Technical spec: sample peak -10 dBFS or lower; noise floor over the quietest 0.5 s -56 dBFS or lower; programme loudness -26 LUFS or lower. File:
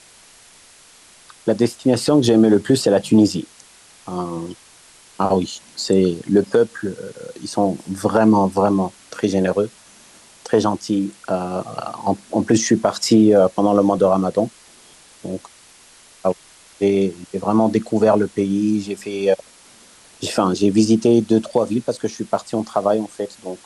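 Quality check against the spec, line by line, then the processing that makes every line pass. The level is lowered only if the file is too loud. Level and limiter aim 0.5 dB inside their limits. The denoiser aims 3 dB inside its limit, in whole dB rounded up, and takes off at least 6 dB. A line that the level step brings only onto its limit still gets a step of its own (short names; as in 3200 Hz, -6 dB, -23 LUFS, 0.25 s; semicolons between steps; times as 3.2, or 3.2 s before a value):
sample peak -4.0 dBFS: fail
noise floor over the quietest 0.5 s -48 dBFS: fail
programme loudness -18.5 LUFS: fail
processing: denoiser 6 dB, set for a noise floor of -48 dBFS; gain -8 dB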